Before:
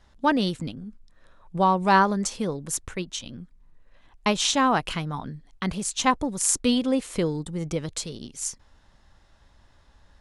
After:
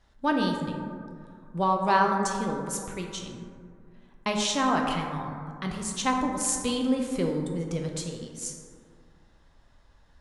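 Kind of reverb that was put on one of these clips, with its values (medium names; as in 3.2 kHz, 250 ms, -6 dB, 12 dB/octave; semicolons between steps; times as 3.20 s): plate-style reverb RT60 2.3 s, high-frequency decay 0.3×, DRR 1 dB; trim -5.5 dB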